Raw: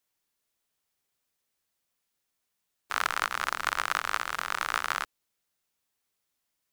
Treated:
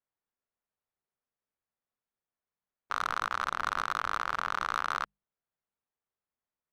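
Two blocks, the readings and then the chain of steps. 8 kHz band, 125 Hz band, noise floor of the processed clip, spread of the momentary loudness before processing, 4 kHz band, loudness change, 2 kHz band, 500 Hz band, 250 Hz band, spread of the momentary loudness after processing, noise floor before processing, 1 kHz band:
-9.0 dB, +2.0 dB, under -85 dBFS, 5 LU, -6.0 dB, -2.0 dB, -4.0 dB, -2.0 dB, 0.0 dB, 4 LU, -81 dBFS, 0.0 dB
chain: LPF 1500 Hz 12 dB/oct; bell 310 Hz -4.5 dB 0.33 oct; notches 50/100/150/200 Hz; sample leveller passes 3; limiter -19.5 dBFS, peak gain reduction 6.5 dB

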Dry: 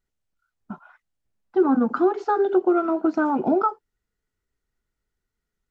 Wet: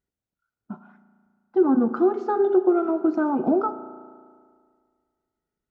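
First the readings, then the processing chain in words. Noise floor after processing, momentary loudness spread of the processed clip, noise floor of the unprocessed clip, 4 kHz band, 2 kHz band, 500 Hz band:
under -85 dBFS, 6 LU, -83 dBFS, n/a, -5.5 dB, +0.5 dB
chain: HPF 160 Hz 6 dB/oct; tilt shelf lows +5.5 dB, about 740 Hz; spring tank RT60 1.9 s, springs 35 ms, chirp 60 ms, DRR 12 dB; gain -2.5 dB

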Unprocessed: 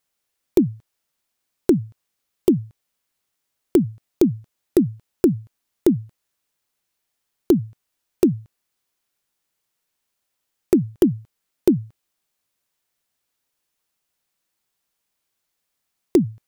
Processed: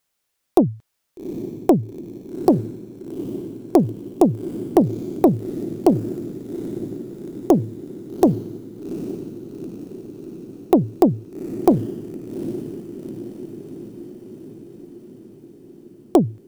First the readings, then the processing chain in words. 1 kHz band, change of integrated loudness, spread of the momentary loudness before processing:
+18.5 dB, 0.0 dB, 7 LU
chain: diffused feedback echo 0.812 s, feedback 65%, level -11.5 dB; Doppler distortion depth 0.43 ms; gain +2.5 dB

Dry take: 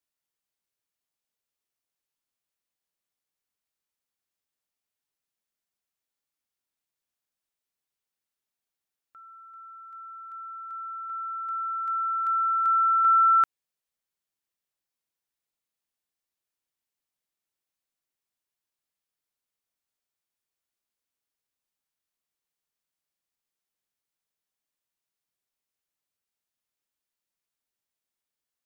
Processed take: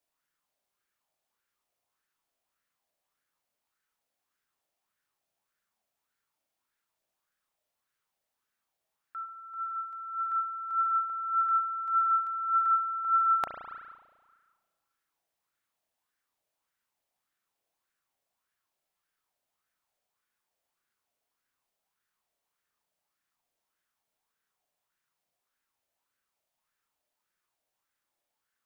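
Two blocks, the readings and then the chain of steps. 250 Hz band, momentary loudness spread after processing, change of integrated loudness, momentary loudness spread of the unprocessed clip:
n/a, 16 LU, -5.0 dB, 21 LU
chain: reverse; compressor 8:1, threshold -35 dBFS, peak gain reduction 16.5 dB; reverse; spring tank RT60 1.6 s, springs 34 ms, chirp 35 ms, DRR 3 dB; LFO bell 1.7 Hz 610–1600 Hz +12 dB; gain +1.5 dB

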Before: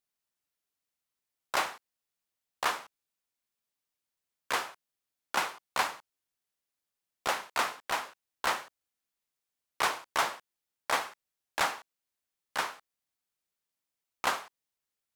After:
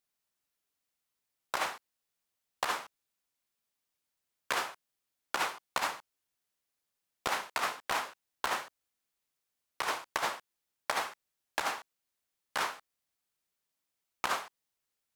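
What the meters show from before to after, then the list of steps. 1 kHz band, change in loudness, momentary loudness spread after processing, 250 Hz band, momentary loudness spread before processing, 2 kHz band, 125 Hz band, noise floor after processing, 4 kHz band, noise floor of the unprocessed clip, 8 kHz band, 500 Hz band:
-2.5 dB, -2.5 dB, 10 LU, -1.5 dB, 13 LU, -2.0 dB, -1.5 dB, under -85 dBFS, -2.0 dB, under -85 dBFS, -2.0 dB, -2.0 dB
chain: negative-ratio compressor -30 dBFS, ratio -0.5

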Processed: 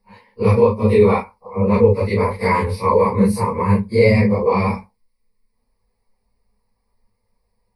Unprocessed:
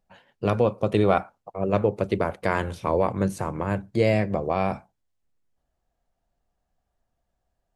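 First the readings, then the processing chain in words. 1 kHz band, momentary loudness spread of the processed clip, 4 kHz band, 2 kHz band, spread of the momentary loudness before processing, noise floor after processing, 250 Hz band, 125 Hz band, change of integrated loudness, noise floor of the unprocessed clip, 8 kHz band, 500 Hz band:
+7.5 dB, 8 LU, +4.5 dB, +7.0 dB, 7 LU, -70 dBFS, +8.5 dB, +9.5 dB, +8.5 dB, -78 dBFS, +7.0 dB, +8.0 dB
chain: phase scrambler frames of 0.1 s; in parallel at -1 dB: limiter -18 dBFS, peak gain reduction 9 dB; on the sum: ripple EQ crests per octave 0.9, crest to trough 18 dB; gain -1 dB

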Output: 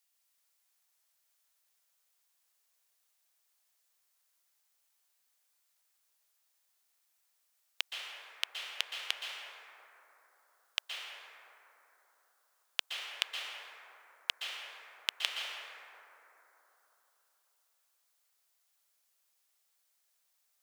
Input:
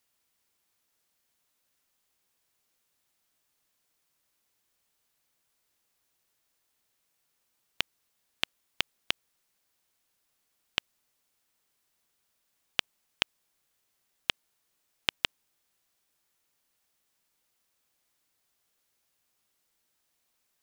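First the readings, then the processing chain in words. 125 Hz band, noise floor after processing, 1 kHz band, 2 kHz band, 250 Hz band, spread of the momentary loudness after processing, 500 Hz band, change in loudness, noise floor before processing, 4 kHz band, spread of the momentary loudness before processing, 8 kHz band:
under -40 dB, -77 dBFS, -3.5 dB, -2.5 dB, under -20 dB, 19 LU, -7.0 dB, -4.0 dB, -77 dBFS, -2.0 dB, 3 LU, +0.5 dB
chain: HPF 520 Hz 24 dB/oct; high shelf 2600 Hz +8.5 dB; plate-style reverb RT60 3.6 s, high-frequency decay 0.3×, pre-delay 0.11 s, DRR -1.5 dB; gain -9 dB

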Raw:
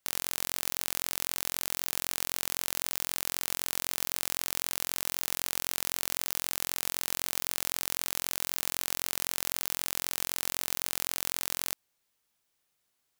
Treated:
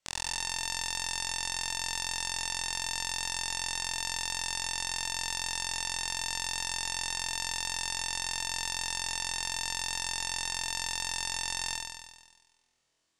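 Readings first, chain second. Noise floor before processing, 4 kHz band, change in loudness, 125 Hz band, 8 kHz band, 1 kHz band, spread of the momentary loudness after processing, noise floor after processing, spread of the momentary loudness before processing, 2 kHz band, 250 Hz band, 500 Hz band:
-78 dBFS, +4.0 dB, -1.0 dB, +1.5 dB, +0.5 dB, +4.5 dB, 0 LU, -72 dBFS, 0 LU, +4.0 dB, -5.0 dB, -6.5 dB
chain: LPF 7900 Hz 24 dB/oct; bell 1600 Hz -2.5 dB; on a send: flutter echo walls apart 4.1 m, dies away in 1.3 s; on the sum: gain -2 dB

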